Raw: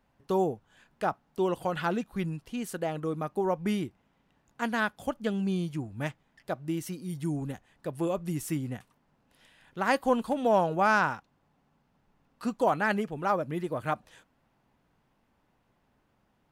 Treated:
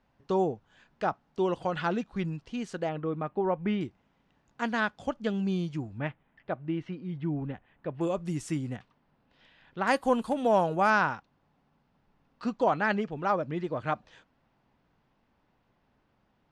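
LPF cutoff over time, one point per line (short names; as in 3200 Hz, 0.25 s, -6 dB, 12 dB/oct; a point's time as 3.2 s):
LPF 24 dB/oct
6400 Hz
from 2.89 s 3200 Hz
from 3.81 s 6600 Hz
from 5.98 s 3000 Hz
from 8.01 s 8100 Hz
from 8.76 s 4800 Hz
from 9.87 s 11000 Hz
from 10.9 s 5700 Hz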